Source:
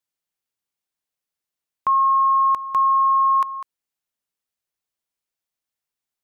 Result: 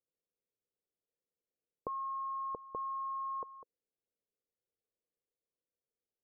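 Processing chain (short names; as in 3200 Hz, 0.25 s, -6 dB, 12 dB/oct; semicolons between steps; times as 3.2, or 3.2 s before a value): ladder low-pass 530 Hz, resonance 65%; gain +6.5 dB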